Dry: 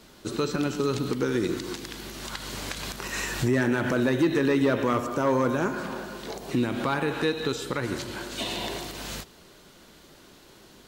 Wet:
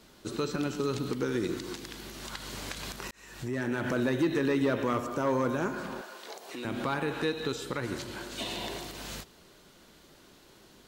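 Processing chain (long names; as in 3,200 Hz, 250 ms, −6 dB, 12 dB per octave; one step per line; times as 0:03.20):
0:03.11–0:03.91: fade in
0:06.01–0:06.65: high-pass filter 550 Hz 12 dB per octave
level −4.5 dB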